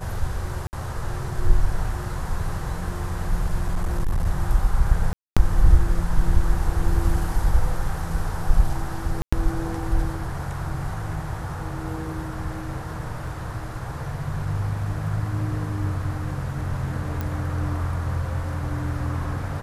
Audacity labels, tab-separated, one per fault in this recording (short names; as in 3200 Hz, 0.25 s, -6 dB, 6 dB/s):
0.670000	0.730000	gap 59 ms
3.610000	4.270000	clipped -18 dBFS
5.130000	5.370000	gap 0.236 s
9.220000	9.320000	gap 0.105 s
13.270000	13.270000	gap 2.9 ms
17.210000	17.210000	pop -15 dBFS